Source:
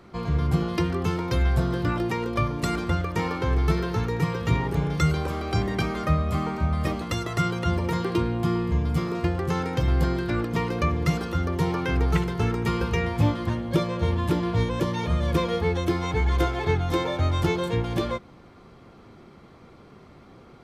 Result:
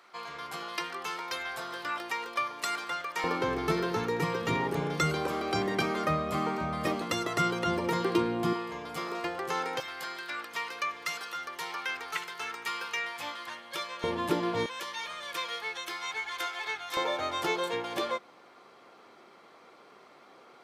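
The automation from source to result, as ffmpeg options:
-af "asetnsamples=n=441:p=0,asendcmd='3.24 highpass f 260;8.53 highpass f 580;9.8 highpass f 1300;14.04 highpass f 330;14.66 highpass f 1400;16.97 highpass f 540',highpass=980"

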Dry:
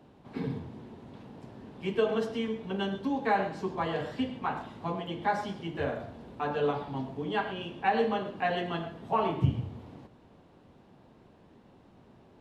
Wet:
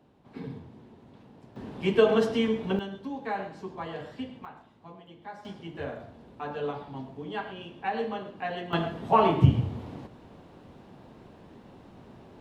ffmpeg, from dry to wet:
-af "asetnsamples=n=441:p=0,asendcmd='1.56 volume volume 6.5dB;2.79 volume volume -5.5dB;4.45 volume volume -14dB;5.45 volume volume -4dB;8.73 volume volume 7dB',volume=-5dB"

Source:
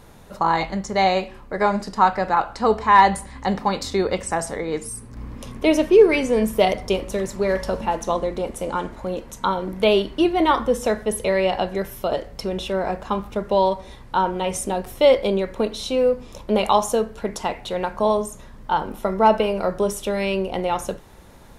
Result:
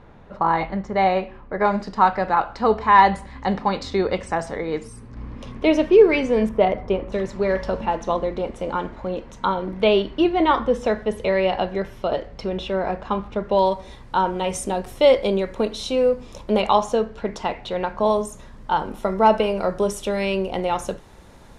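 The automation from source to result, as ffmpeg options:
-af "asetnsamples=n=441:p=0,asendcmd='1.65 lowpass f 4200;6.49 lowpass f 1800;7.12 lowpass f 4000;13.59 lowpass f 9400;16.61 lowpass f 4700;18.06 lowpass f 9500',lowpass=2.3k"

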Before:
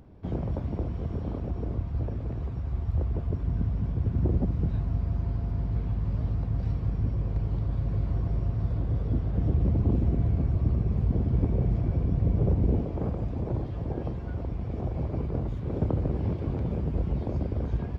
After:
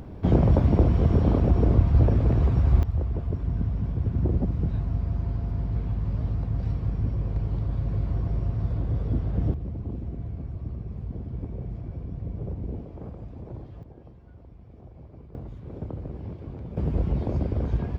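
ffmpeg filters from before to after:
-af "asetnsamples=n=441:p=0,asendcmd='2.83 volume volume 1dB;9.54 volume volume -9dB;13.83 volume volume -16dB;15.35 volume volume -8dB;16.77 volume volume 3dB',volume=11.5dB"

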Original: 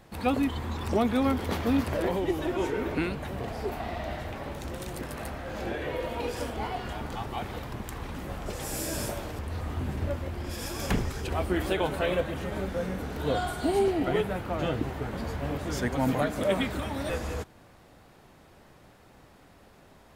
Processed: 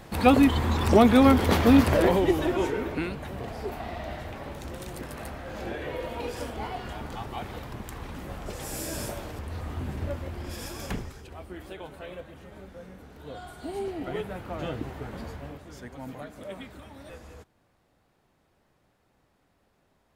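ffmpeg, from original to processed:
-af "volume=17.5dB,afade=t=out:st=1.89:d=1.02:silence=0.334965,afade=t=out:st=10.56:d=0.72:silence=0.251189,afade=t=in:st=13.32:d=1.24:silence=0.334965,afade=t=out:st=15.21:d=0.43:silence=0.334965"

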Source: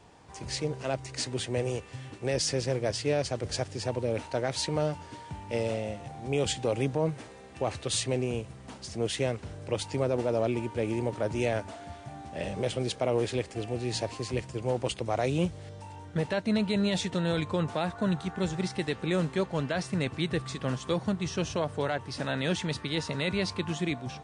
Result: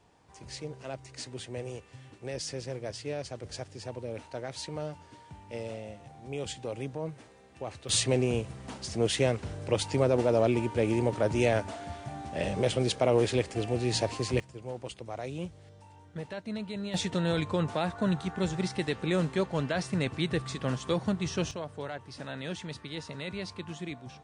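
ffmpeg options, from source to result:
-af "asetnsamples=n=441:p=0,asendcmd='7.89 volume volume 3dB;14.4 volume volume -9.5dB;16.94 volume volume 0dB;21.51 volume volume -8dB',volume=-8dB"

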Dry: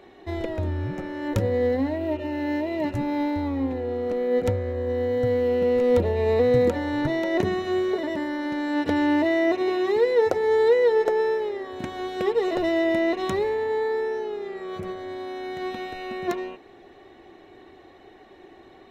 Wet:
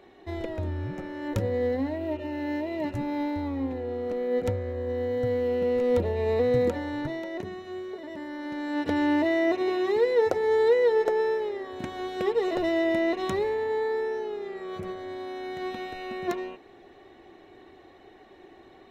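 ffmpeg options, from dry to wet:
-af "volume=6dB,afade=t=out:st=6.71:d=0.71:silence=0.375837,afade=t=in:st=8:d=1.04:silence=0.316228"

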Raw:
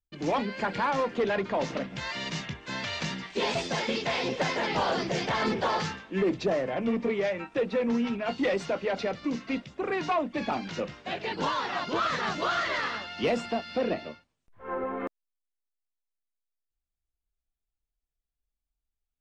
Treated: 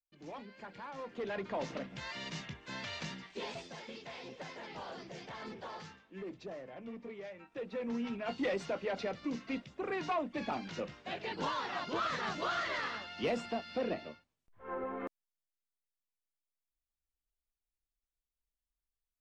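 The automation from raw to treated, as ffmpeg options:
-af "volume=2.5dB,afade=t=in:st=0.92:d=0.61:silence=0.298538,afade=t=out:st=2.94:d=0.79:silence=0.334965,afade=t=in:st=7.39:d=0.93:silence=0.281838"

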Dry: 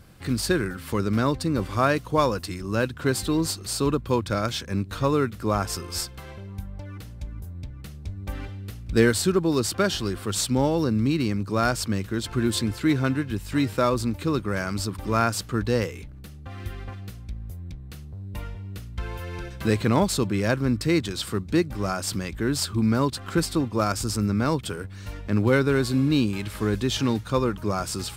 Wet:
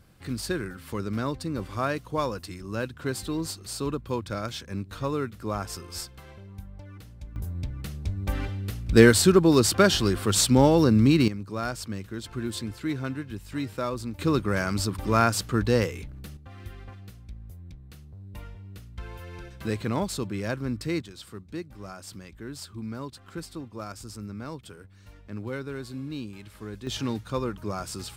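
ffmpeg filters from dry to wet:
-af "asetnsamples=n=441:p=0,asendcmd='7.36 volume volume 4dB;11.28 volume volume -8dB;14.19 volume volume 1dB;16.37 volume volume -7dB;21.02 volume volume -14dB;26.87 volume volume -6dB',volume=-6.5dB"

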